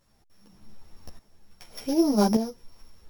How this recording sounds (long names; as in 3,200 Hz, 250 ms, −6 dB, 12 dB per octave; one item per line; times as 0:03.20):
a buzz of ramps at a fixed pitch in blocks of 8 samples
tremolo saw up 0.85 Hz, depth 80%
a quantiser's noise floor 12 bits, dither none
a shimmering, thickened sound